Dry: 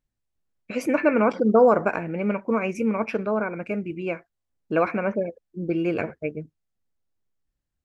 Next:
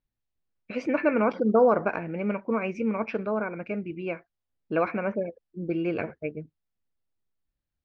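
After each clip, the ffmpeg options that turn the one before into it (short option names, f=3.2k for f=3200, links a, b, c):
-af "lowpass=f=4.9k:w=0.5412,lowpass=f=4.9k:w=1.3066,volume=-3.5dB"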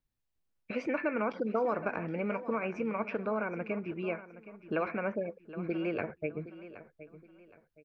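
-filter_complex "[0:a]acrossover=split=460|1100|2500[a][b][c][d];[a]acompressor=threshold=-36dB:ratio=4[e];[b]acompressor=threshold=-36dB:ratio=4[f];[c]acompressor=threshold=-38dB:ratio=4[g];[d]acompressor=threshold=-53dB:ratio=4[h];[e][f][g][h]amix=inputs=4:normalize=0,aecho=1:1:769|1538|2307:0.178|0.0569|0.0182"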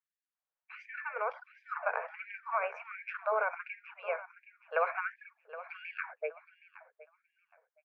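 -filter_complex "[0:a]acrossover=split=570 2100:gain=0.2 1 0.126[a][b][c];[a][b][c]amix=inputs=3:normalize=0,dynaudnorm=f=290:g=11:m=7dB,afftfilt=real='re*gte(b*sr/1024,390*pow(1600/390,0.5+0.5*sin(2*PI*1.4*pts/sr)))':imag='im*gte(b*sr/1024,390*pow(1600/390,0.5+0.5*sin(2*PI*1.4*pts/sr)))':win_size=1024:overlap=0.75"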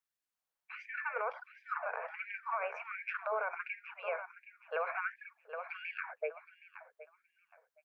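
-af "bandreject=f=50:t=h:w=6,bandreject=f=100:t=h:w=6,bandreject=f=150:t=h:w=6,bandreject=f=200:t=h:w=6,bandreject=f=250:t=h:w=6,bandreject=f=300:t=h:w=6,bandreject=f=350:t=h:w=6,bandreject=f=400:t=h:w=6,alimiter=level_in=4dB:limit=-24dB:level=0:latency=1:release=107,volume=-4dB,volume=2dB"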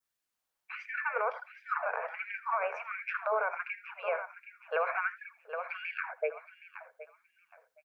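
-af "aecho=1:1:81:0.119,adynamicequalizer=threshold=0.00251:dfrequency=2600:dqfactor=1.5:tfrequency=2600:tqfactor=1.5:attack=5:release=100:ratio=0.375:range=1.5:mode=cutabove:tftype=bell,volume=5dB"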